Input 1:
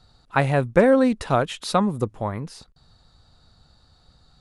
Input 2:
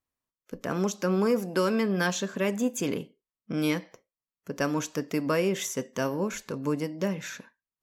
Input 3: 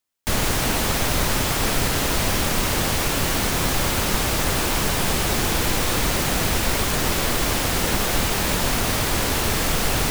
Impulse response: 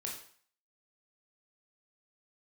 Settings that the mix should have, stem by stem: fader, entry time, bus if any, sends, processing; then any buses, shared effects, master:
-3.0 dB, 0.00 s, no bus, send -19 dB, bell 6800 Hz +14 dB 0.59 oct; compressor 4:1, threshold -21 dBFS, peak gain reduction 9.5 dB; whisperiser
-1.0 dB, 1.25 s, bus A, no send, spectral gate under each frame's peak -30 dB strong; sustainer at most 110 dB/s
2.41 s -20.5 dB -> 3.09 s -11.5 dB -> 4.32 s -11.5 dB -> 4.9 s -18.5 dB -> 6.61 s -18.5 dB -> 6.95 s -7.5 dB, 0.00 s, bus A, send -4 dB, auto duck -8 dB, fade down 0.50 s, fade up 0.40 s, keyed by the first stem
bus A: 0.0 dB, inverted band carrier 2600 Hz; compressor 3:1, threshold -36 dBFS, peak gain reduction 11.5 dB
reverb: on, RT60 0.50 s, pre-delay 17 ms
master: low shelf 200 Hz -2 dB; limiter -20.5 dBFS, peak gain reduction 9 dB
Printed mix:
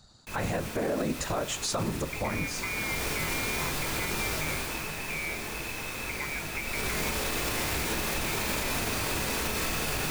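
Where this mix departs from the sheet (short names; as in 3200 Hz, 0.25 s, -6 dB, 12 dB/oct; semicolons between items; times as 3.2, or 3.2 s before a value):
stem 2: entry 1.25 s -> 1.60 s; reverb return +7.5 dB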